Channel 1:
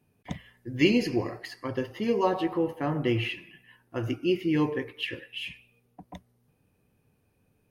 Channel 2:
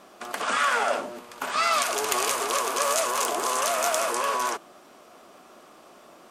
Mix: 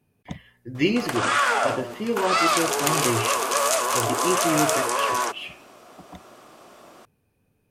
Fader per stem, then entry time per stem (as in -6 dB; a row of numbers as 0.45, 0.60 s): +0.5, +2.5 dB; 0.00, 0.75 s